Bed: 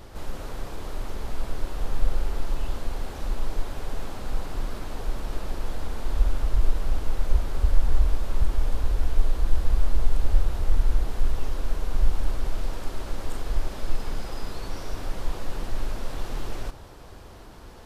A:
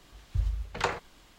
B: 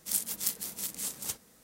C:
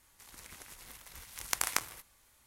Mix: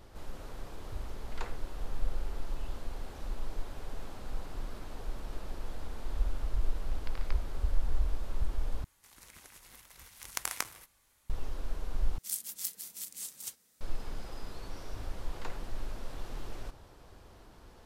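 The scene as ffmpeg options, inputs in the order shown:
ffmpeg -i bed.wav -i cue0.wav -i cue1.wav -i cue2.wav -filter_complex "[1:a]asplit=2[link_01][link_02];[3:a]asplit=2[link_03][link_04];[0:a]volume=-9.5dB[link_05];[link_03]aresample=11025,aresample=44100[link_06];[2:a]tiltshelf=frequency=1400:gain=-5.5[link_07];[link_05]asplit=3[link_08][link_09][link_10];[link_08]atrim=end=8.844[link_11];[link_04]atrim=end=2.46,asetpts=PTS-STARTPTS,volume=-3.5dB[link_12];[link_09]atrim=start=11.296:end=12.184[link_13];[link_07]atrim=end=1.63,asetpts=PTS-STARTPTS,volume=-11dB[link_14];[link_10]atrim=start=13.806[link_15];[link_01]atrim=end=1.38,asetpts=PTS-STARTPTS,volume=-15dB,afade=type=in:duration=0.004:curve=hsin,afade=type=out:start_time=1.376:duration=0.004:curve=hsin,adelay=570[link_16];[link_06]atrim=end=2.46,asetpts=PTS-STARTPTS,volume=-15.5dB,afade=type=in:duration=0.004:curve=hsin,afade=type=out:start_time=2.456:duration=0.004:curve=hsin,adelay=5540[link_17];[link_02]atrim=end=1.38,asetpts=PTS-STARTPTS,volume=-17dB,afade=type=in:duration=0.004:curve=hsin,afade=type=out:start_time=1.376:duration=0.004:curve=hsin,adelay=14610[link_18];[link_11][link_12]acrossfade=duration=0.004:curve1=hsin:curve2=hsin[link_19];[link_19][link_13]acrossfade=duration=0.004:curve1=hsin:curve2=hsin[link_20];[link_20][link_14]acrossfade=duration=0.004:curve1=hsin:curve2=hsin[link_21];[link_21][link_15]acrossfade=duration=0.004:curve1=hsin:curve2=hsin[link_22];[link_22][link_16][link_17][link_18]amix=inputs=4:normalize=0" out.wav

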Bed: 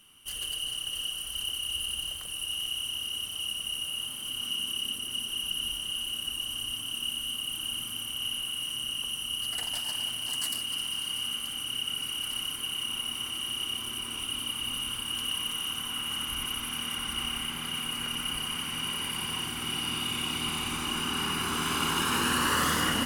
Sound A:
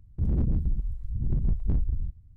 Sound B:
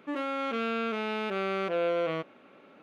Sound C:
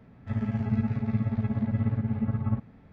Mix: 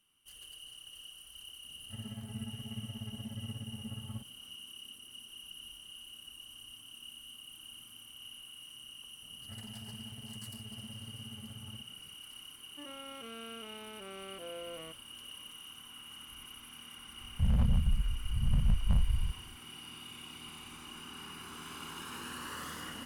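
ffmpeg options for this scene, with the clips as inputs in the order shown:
ffmpeg -i bed.wav -i cue0.wav -i cue1.wav -i cue2.wav -filter_complex "[3:a]asplit=2[link_01][link_02];[0:a]volume=-16.5dB[link_03];[link_02]acompressor=threshold=-33dB:ratio=6:attack=3.2:release=140:knee=1:detection=peak[link_04];[1:a]firequalizer=gain_entry='entry(230,0);entry(320,-27);entry(490,0);entry(930,10)':delay=0.05:min_phase=1[link_05];[link_01]atrim=end=2.92,asetpts=PTS-STARTPTS,volume=-15.5dB,afade=type=in:duration=0.004:curve=hsin,afade=type=out:start_time=2.916:duration=0.004:curve=hsin,adelay=1630[link_06];[link_04]atrim=end=2.92,asetpts=PTS-STARTPTS,volume=-11.5dB,afade=type=in:duration=0.004:curve=hsin,afade=type=out:start_time=2.916:duration=0.004:curve=hsin,adelay=406602S[link_07];[2:a]atrim=end=2.82,asetpts=PTS-STARTPTS,volume=-16.5dB,afade=type=in:duration=0.004:curve=hsin,afade=type=out:start_time=2.816:duration=0.004:curve=hsin,adelay=12700[link_08];[link_05]atrim=end=2.36,asetpts=PTS-STARTPTS,volume=-2dB,afade=type=in:duration=0.004:curve=hsin,afade=type=out:start_time=2.356:duration=0.004:curve=hsin,adelay=17210[link_09];[link_03][link_06][link_07][link_08][link_09]amix=inputs=5:normalize=0" out.wav

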